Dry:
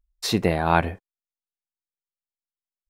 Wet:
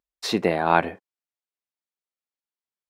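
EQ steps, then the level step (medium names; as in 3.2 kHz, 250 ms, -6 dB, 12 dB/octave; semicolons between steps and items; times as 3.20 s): high-pass 230 Hz 12 dB/octave; low-pass 4 kHz 6 dB/octave; +1.5 dB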